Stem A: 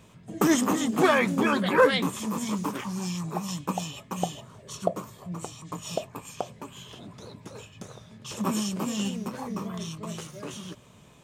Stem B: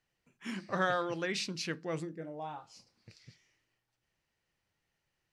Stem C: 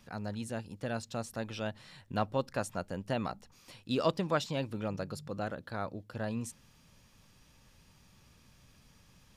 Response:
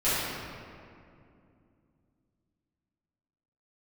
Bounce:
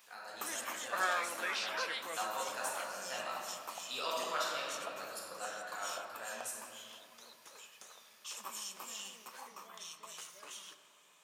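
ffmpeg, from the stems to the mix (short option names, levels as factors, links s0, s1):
-filter_complex "[0:a]acompressor=threshold=0.0251:ratio=2,volume=0.447,asplit=2[s0][s1];[s1]volume=0.0794[s2];[1:a]lowpass=f=2600:p=1,adelay=200,volume=1.12[s3];[2:a]highshelf=f=11000:g=9.5,volume=0.376,asplit=2[s4][s5];[s5]volume=0.562[s6];[3:a]atrim=start_sample=2205[s7];[s2][s6]amix=inputs=2:normalize=0[s8];[s8][s7]afir=irnorm=-1:irlink=0[s9];[s0][s3][s4][s9]amix=inputs=4:normalize=0,highpass=1000,highshelf=f=7900:g=5.5"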